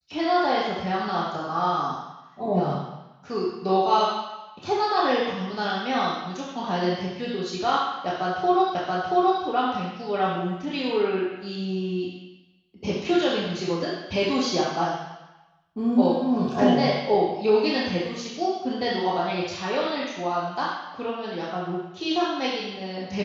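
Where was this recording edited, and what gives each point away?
8.75 repeat of the last 0.68 s

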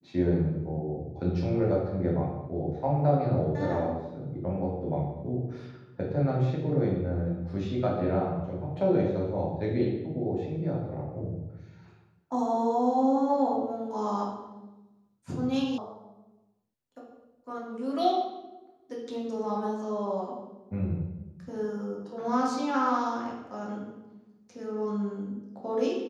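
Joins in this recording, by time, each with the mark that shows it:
15.78 sound cut off

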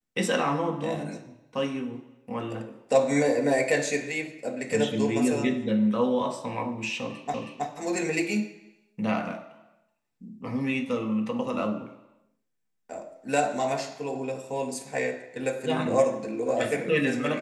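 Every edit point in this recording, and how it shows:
7.34 repeat of the last 0.32 s

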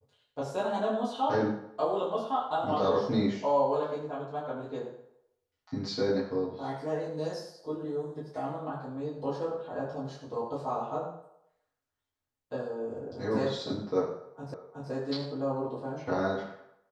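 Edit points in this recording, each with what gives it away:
14.54 repeat of the last 0.37 s

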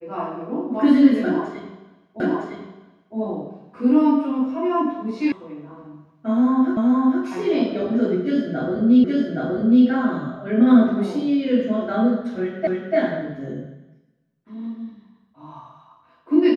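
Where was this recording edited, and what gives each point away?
2.2 repeat of the last 0.96 s
5.32 sound cut off
6.77 repeat of the last 0.47 s
9.04 repeat of the last 0.82 s
12.67 repeat of the last 0.29 s

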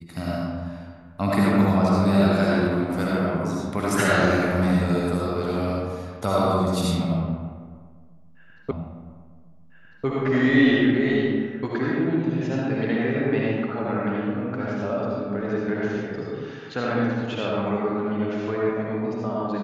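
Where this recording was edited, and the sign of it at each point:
8.71 repeat of the last 1.35 s

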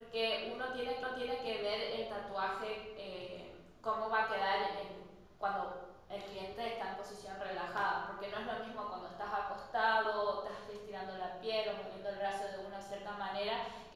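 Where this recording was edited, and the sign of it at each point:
1.03 repeat of the last 0.42 s

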